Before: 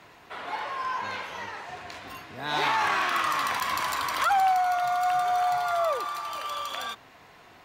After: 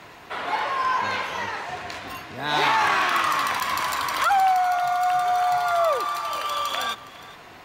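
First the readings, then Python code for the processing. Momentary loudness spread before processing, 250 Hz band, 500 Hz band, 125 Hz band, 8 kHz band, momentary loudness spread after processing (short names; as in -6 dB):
16 LU, +5.0 dB, +4.5 dB, +5.0 dB, +4.0 dB, 14 LU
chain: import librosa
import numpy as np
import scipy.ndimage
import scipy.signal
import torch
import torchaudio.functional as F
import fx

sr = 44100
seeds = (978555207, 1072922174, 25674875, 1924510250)

p1 = fx.rider(x, sr, range_db=3, speed_s=2.0)
p2 = p1 + fx.echo_single(p1, sr, ms=413, db=-18.5, dry=0)
y = p2 * librosa.db_to_amplitude(4.5)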